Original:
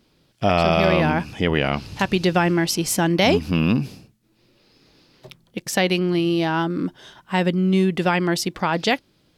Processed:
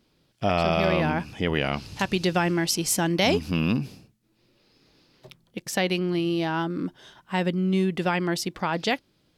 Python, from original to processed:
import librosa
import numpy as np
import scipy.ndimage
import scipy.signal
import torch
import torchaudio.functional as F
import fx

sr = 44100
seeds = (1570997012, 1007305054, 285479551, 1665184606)

y = fx.peak_eq(x, sr, hz=8000.0, db=4.5, octaves=2.1, at=(1.47, 3.78))
y = y * librosa.db_to_amplitude(-5.0)